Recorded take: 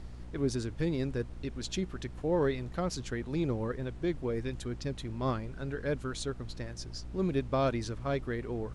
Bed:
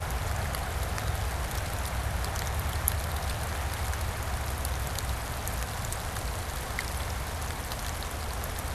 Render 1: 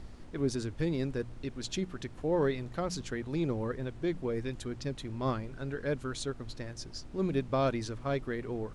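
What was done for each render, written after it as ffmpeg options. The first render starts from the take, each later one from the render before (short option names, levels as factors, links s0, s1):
-af "bandreject=f=60:t=h:w=4,bandreject=f=120:t=h:w=4,bandreject=f=180:t=h:w=4"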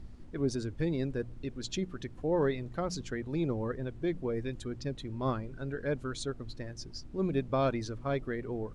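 -af "afftdn=nr=8:nf=-47"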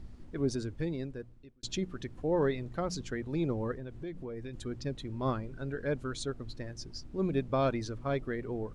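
-filter_complex "[0:a]asettb=1/sr,asplit=3[s0][s1][s2];[s0]atrim=end=3.734[s3];[s1]atrim=start=3.73:end=4.54,asetpts=PTS-STARTPTS,afade=t=in:d=0.004:c=qsin,afade=t=out:st=0.806:d=0.004:c=qsin,acompressor=threshold=0.0112:ratio=3:attack=3.2:release=140:knee=1:detection=peak[s4];[s2]atrim=start=4.536[s5];[s3][s4]acrossfade=d=0.004:c1=hsin:c2=qsin[s6];[s6][s5]acrossfade=d=0.004:c1=qsin:c2=hsin,asplit=2[s7][s8];[s7]atrim=end=1.63,asetpts=PTS-STARTPTS,afade=t=out:st=0.55:d=1.08[s9];[s8]atrim=start=1.63,asetpts=PTS-STARTPTS,afade=t=in:d=0.004:c=hsin[s10];[s9][s10]concat=n=2:v=0:a=1"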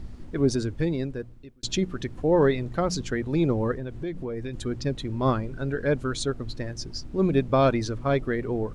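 -af "volume=2.66"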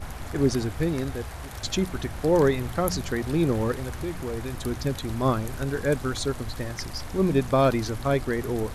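-filter_complex "[1:a]volume=0.501[s0];[0:a][s0]amix=inputs=2:normalize=0"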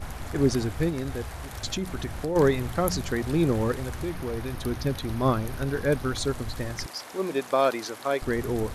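-filter_complex "[0:a]asplit=3[s0][s1][s2];[s0]afade=t=out:st=0.89:d=0.02[s3];[s1]acompressor=threshold=0.0562:ratio=6:attack=3.2:release=140:knee=1:detection=peak,afade=t=in:st=0.89:d=0.02,afade=t=out:st=2.35:d=0.02[s4];[s2]afade=t=in:st=2.35:d=0.02[s5];[s3][s4][s5]amix=inputs=3:normalize=0,asettb=1/sr,asplit=3[s6][s7][s8];[s6]atrim=end=4.094[s9];[s7]atrim=start=4.09:end=6.18,asetpts=PTS-STARTPTS,afade=t=in:d=0.004:c=qsin,afade=t=out:st=2.086:d=0.004:c=qsin,equalizer=f=7500:t=o:w=0.28:g=-10[s10];[s8]atrim=start=6.176[s11];[s9][s10]acrossfade=d=0.004:c1=hsin:c2=qsin[s12];[s12][s11]acrossfade=d=0.004:c1=qsin:c2=hsin,asettb=1/sr,asplit=3[s13][s14][s15];[s13]atrim=end=6.864[s16];[s14]atrim=start=6.86:end=8.22,asetpts=PTS-STARTPTS,afade=t=in:d=0.004:c=qsin,afade=t=out:st=1.356:d=0.004:c=qsin,highpass=420[s17];[s15]atrim=start=8.216[s18];[s16][s17]acrossfade=d=0.004:c1=hsin:c2=qsin[s19];[s19][s18]acrossfade=d=0.004:c1=qsin:c2=hsin"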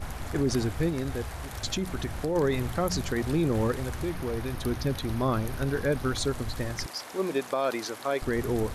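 -af "alimiter=limit=0.133:level=0:latency=1:release=36"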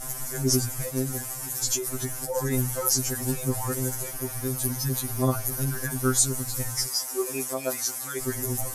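-af "aexciter=amount=8.1:drive=5.3:freq=5500,afftfilt=real='re*2.45*eq(mod(b,6),0)':imag='im*2.45*eq(mod(b,6),0)':win_size=2048:overlap=0.75"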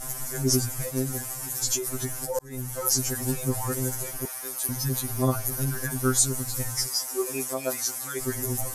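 -filter_complex "[0:a]asettb=1/sr,asplit=3[s0][s1][s2];[s0]atrim=end=4.254[s3];[s1]atrim=start=4.25:end=4.69,asetpts=PTS-STARTPTS,afade=t=in:d=0.004:c=qsin,afade=t=out:st=0.436:d=0.004:c=qsin,highpass=700[s4];[s2]atrim=start=4.686[s5];[s3][s4]acrossfade=d=0.004:c1=hsin:c2=qsin[s6];[s6][s5]acrossfade=d=0.004:c1=qsin:c2=hsin,asplit=2[s7][s8];[s7]atrim=end=2.39,asetpts=PTS-STARTPTS,afade=t=out:st=2.386:d=0.004:c=hsin[s9];[s8]atrim=start=2.39,asetpts=PTS-STARTPTS,afade=t=in:d=0.54[s10];[s9][s10]concat=n=2:v=0:a=1"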